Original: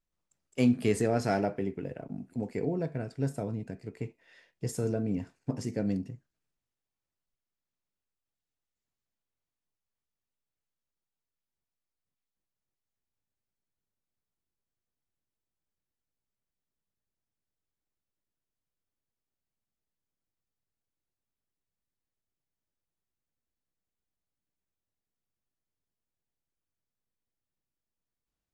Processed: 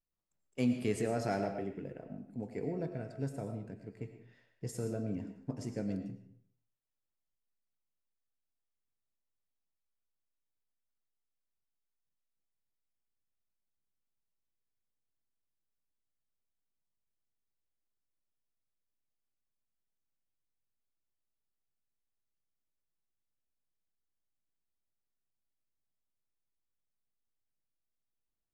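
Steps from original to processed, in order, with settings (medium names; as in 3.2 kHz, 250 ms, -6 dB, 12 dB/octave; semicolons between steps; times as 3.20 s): reverberation RT60 0.55 s, pre-delay 65 ms, DRR 7 dB; tape noise reduction on one side only decoder only; trim -6.5 dB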